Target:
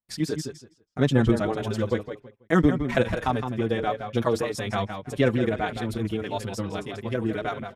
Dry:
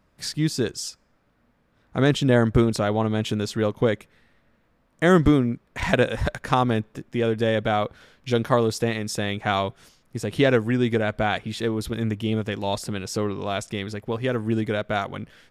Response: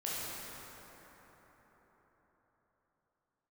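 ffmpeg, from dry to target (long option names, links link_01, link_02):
-filter_complex "[0:a]equalizer=frequency=4900:width_type=o:width=2:gain=-2.5,agate=range=-30dB:threshold=-51dB:ratio=16:detection=peak,asplit=2[link_01][link_02];[link_02]adelay=327,lowpass=frequency=4600:poles=1,volume=-7.5dB,asplit=2[link_03][link_04];[link_04]adelay=327,lowpass=frequency=4600:poles=1,volume=0.21,asplit=2[link_05][link_06];[link_06]adelay=327,lowpass=frequency=4600:poles=1,volume=0.21[link_07];[link_01][link_03][link_05][link_07]amix=inputs=4:normalize=0,atempo=2,asplit=2[link_08][link_09];[link_09]adelay=5.4,afreqshift=-1.7[link_10];[link_08][link_10]amix=inputs=2:normalize=1"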